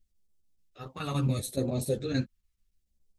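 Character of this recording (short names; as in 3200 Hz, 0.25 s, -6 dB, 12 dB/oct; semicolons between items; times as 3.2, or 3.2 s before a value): phasing stages 2, 0.72 Hz, lowest notch 550–1400 Hz; chopped level 7 Hz, depth 65%, duty 85%; a shimmering, thickened sound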